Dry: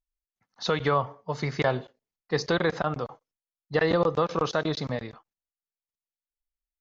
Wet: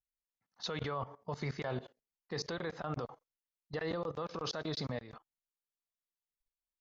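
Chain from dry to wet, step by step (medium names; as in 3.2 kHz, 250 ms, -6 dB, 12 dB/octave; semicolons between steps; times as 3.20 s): 4.28–4.86 s: peaking EQ 4.8 kHz +7 dB 0.31 oct; level held to a coarse grid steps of 17 dB; peak limiter -28 dBFS, peak gain reduction 7.5 dB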